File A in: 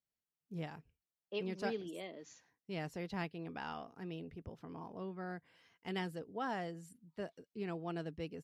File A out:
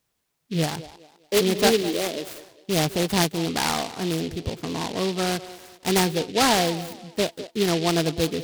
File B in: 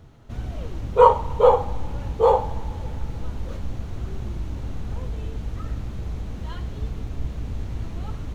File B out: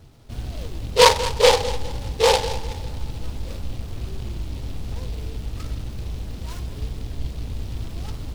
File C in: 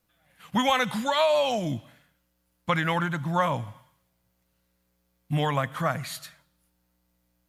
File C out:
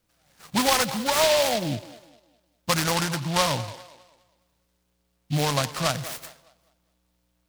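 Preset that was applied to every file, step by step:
bell 190 Hz -3 dB 0.42 oct; on a send: band-limited delay 0.203 s, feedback 34%, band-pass 590 Hz, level -14 dB; on the sum: noise-modulated delay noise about 3300 Hz, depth 0.12 ms; match loudness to -24 LUFS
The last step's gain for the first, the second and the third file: +19.5, 0.0, +2.0 dB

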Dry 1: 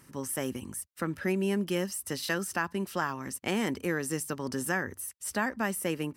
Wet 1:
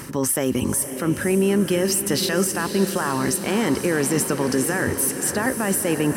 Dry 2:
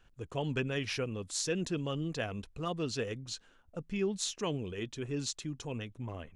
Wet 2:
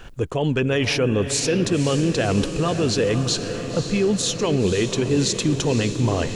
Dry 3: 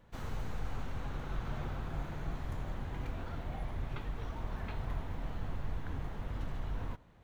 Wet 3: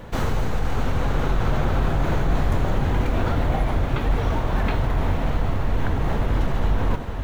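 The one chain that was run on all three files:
bell 460 Hz +3.5 dB 1.5 oct; reverse; compressor 10:1, threshold -38 dBFS; reverse; limiter -36 dBFS; diffused feedback echo 0.532 s, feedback 69%, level -9.5 dB; normalise peaks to -9 dBFS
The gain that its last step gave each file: +24.0, +23.0, +22.5 dB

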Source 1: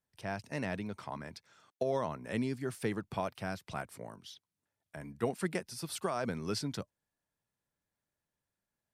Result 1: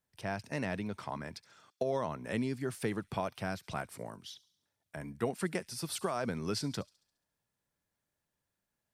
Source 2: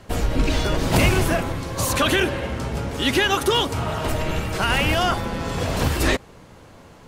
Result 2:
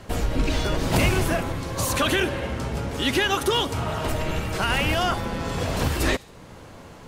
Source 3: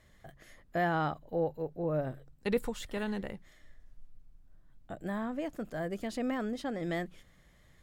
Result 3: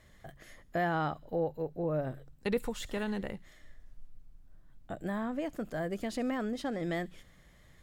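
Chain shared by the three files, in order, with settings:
in parallel at +1 dB: compressor, threshold -35 dBFS; on the sum: thin delay 69 ms, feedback 54%, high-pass 3800 Hz, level -18 dB; gain -4 dB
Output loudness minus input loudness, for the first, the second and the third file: +0.5, -2.5, 0.0 LU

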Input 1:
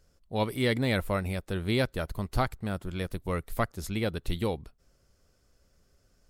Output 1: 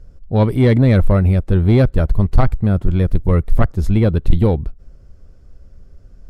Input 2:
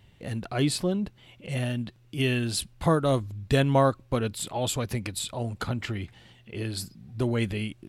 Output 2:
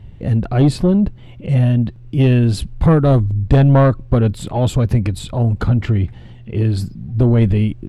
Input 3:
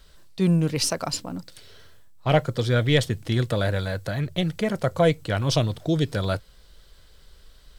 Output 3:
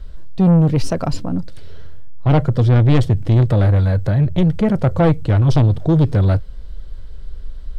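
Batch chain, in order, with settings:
tilt -3.5 dB/oct; soft clip -13.5 dBFS; match loudness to -16 LUFS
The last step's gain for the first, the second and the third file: +9.5, +8.0, +5.0 dB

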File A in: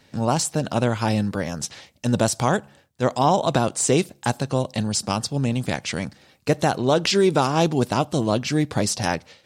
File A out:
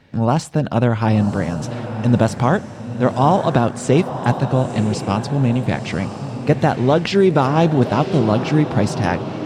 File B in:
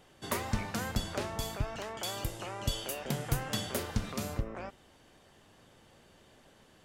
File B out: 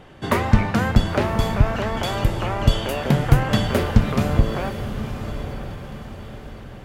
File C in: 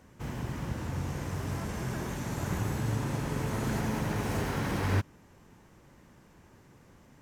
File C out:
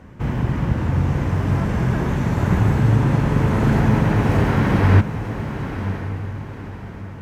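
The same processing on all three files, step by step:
tone controls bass +4 dB, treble -14 dB; diffused feedback echo 1.005 s, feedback 42%, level -9.5 dB; normalise peaks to -2 dBFS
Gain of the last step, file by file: +3.0, +14.0, +11.5 dB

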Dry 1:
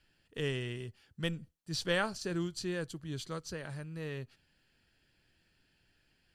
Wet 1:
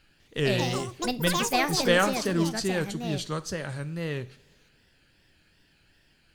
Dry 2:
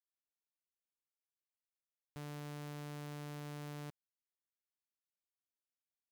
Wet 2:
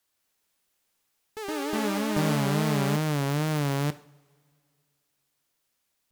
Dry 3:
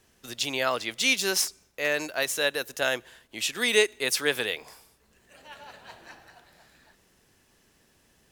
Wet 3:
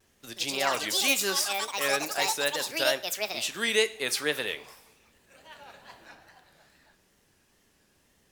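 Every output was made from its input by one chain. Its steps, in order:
wow and flutter 100 cents; two-slope reverb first 0.5 s, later 2.3 s, from -21 dB, DRR 12.5 dB; echoes that change speed 0.201 s, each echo +6 st, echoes 3; match loudness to -27 LUFS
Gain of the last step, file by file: +8.5, +19.0, -3.0 dB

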